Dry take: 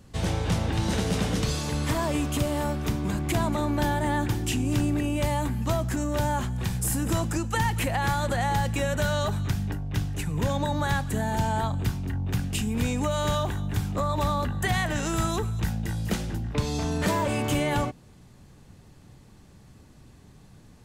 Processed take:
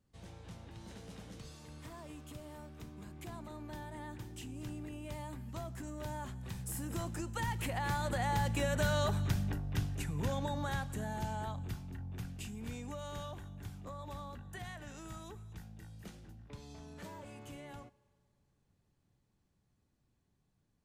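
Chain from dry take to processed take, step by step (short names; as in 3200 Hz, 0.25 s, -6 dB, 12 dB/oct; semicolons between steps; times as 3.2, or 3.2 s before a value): Doppler pass-by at 9.13, 8 m/s, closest 8 m; on a send: reverb RT60 2.1 s, pre-delay 3 ms, DRR 21.5 dB; on the sum: gain -5.5 dB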